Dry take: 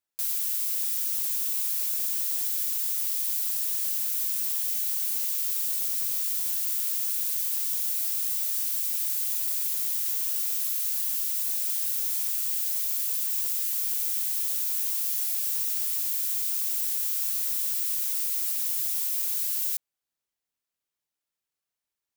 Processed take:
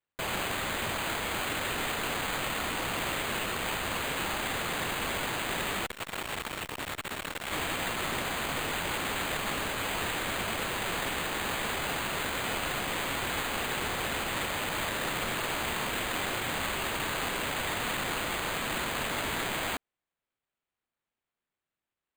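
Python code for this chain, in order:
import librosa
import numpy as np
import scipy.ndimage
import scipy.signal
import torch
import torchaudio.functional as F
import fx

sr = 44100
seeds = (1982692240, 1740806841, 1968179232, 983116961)

y = np.repeat(x[::8], 8)[:len(x)]
y = fx.transformer_sat(y, sr, knee_hz=780.0, at=(5.86, 7.52))
y = y * 10.0 ** (-4.5 / 20.0)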